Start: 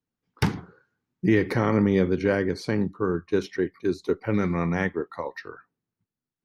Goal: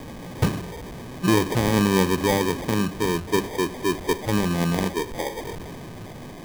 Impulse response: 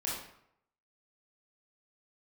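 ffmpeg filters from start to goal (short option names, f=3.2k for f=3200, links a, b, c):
-filter_complex "[0:a]aeval=exprs='val(0)+0.5*0.0299*sgn(val(0))':c=same,asplit=2[a][b];[1:a]atrim=start_sample=2205[c];[b][c]afir=irnorm=-1:irlink=0,volume=-23dB[d];[a][d]amix=inputs=2:normalize=0,acrusher=samples=32:mix=1:aa=0.000001"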